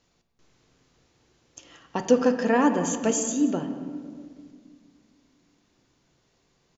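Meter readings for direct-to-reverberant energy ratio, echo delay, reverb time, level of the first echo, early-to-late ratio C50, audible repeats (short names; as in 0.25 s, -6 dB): 6.5 dB, 0.18 s, 1.9 s, -17.5 dB, 8.5 dB, 1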